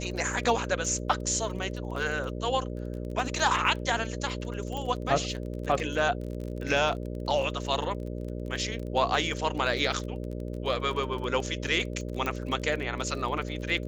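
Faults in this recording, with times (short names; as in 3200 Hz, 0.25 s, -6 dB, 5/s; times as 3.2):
buzz 60 Hz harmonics 10 -35 dBFS
crackle 29/s -35 dBFS
4.77 pop -21 dBFS
12.26 pop -17 dBFS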